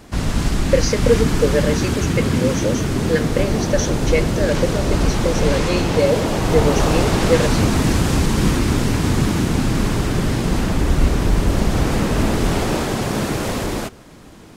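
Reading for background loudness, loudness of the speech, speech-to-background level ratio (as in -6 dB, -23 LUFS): -19.5 LUFS, -22.0 LUFS, -2.5 dB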